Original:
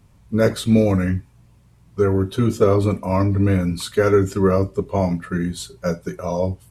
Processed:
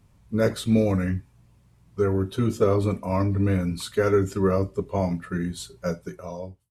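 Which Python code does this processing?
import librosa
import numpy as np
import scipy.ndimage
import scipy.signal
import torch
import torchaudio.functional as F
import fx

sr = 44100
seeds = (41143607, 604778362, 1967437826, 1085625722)

y = fx.fade_out_tail(x, sr, length_s=0.83)
y = F.gain(torch.from_numpy(y), -5.0).numpy()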